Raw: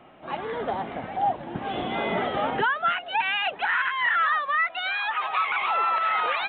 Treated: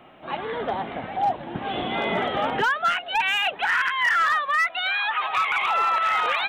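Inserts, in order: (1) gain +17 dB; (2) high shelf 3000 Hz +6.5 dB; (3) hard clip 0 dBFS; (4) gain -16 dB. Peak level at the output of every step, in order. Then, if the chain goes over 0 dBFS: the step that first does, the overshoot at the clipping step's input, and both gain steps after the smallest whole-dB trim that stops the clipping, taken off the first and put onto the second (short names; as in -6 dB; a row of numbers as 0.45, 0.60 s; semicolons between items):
+2.5, +4.0, 0.0, -16.0 dBFS; step 1, 4.0 dB; step 1 +13 dB, step 4 -12 dB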